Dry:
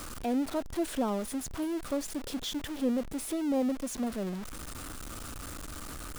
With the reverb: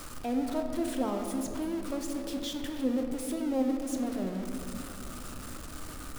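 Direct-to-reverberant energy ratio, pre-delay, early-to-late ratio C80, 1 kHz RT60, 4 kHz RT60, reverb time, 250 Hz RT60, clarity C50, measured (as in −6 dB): 3.0 dB, 6 ms, 6.0 dB, 2.6 s, 1.3 s, 2.9 s, 3.7 s, 4.5 dB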